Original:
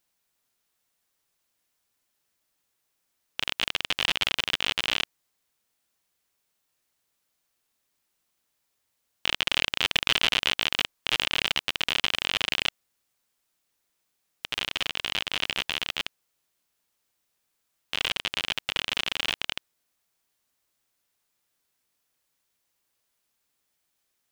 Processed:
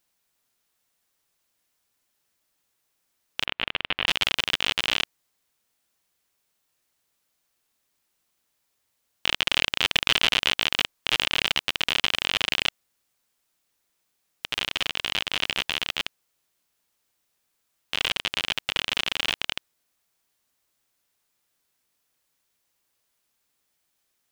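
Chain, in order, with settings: 3.45–4.07 LPF 3100 Hz 24 dB/oct; gain +2 dB

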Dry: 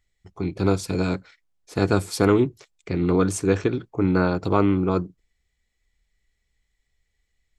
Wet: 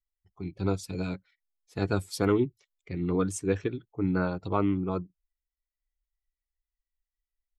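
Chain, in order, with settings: per-bin expansion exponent 1.5; gain -5 dB

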